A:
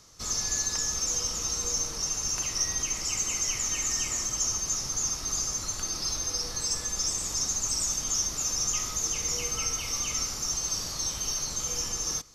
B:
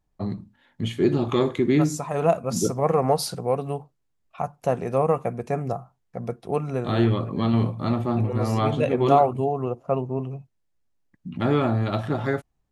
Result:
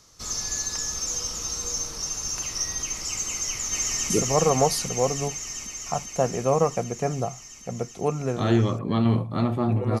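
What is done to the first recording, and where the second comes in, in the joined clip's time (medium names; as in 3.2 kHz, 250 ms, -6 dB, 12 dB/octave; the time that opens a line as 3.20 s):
A
3.33–4.10 s: echo throw 390 ms, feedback 80%, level -1.5 dB
4.10 s: go over to B from 2.58 s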